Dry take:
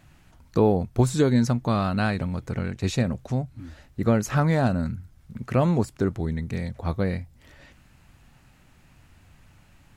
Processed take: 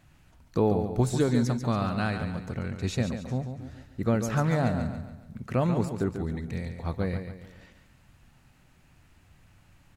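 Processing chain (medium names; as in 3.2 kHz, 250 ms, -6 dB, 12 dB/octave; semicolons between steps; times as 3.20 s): feedback delay 141 ms, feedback 42%, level -8 dB; trim -4.5 dB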